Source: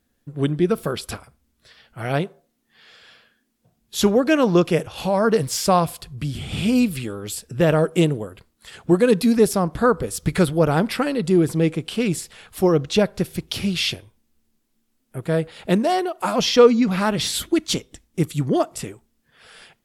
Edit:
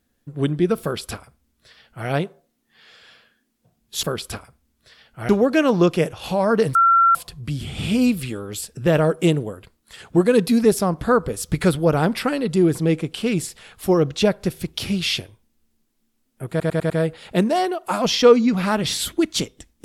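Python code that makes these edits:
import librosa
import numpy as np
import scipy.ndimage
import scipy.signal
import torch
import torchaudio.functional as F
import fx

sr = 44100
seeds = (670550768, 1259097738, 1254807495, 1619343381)

y = fx.edit(x, sr, fx.duplicate(start_s=0.82, length_s=1.26, to_s=4.03),
    fx.bleep(start_s=5.49, length_s=0.4, hz=1360.0, db=-11.0),
    fx.stutter(start_s=15.24, slice_s=0.1, count=5), tone=tone)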